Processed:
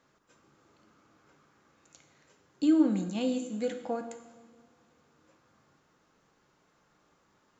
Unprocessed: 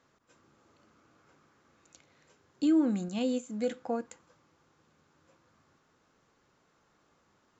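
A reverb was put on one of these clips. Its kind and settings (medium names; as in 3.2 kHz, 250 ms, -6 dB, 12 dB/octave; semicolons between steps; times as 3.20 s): two-slope reverb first 0.93 s, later 3.1 s, from -18 dB, DRR 6.5 dB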